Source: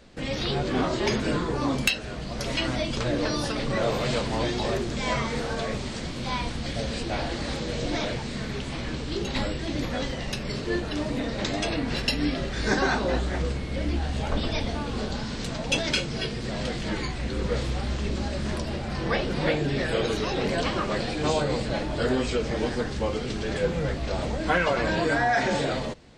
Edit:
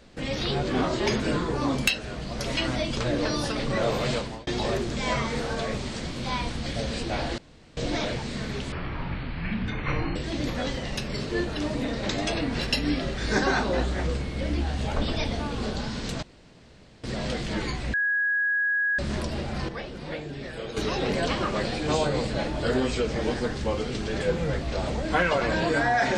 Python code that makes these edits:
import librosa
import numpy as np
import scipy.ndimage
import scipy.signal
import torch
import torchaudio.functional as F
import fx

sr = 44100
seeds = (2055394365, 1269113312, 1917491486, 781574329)

y = fx.edit(x, sr, fx.fade_out_span(start_s=4.1, length_s=0.37),
    fx.room_tone_fill(start_s=7.38, length_s=0.39),
    fx.speed_span(start_s=8.72, length_s=0.79, speed=0.55),
    fx.room_tone_fill(start_s=15.58, length_s=0.81),
    fx.bleep(start_s=17.29, length_s=1.05, hz=1660.0, db=-21.5),
    fx.clip_gain(start_s=19.04, length_s=1.08, db=-10.0), tone=tone)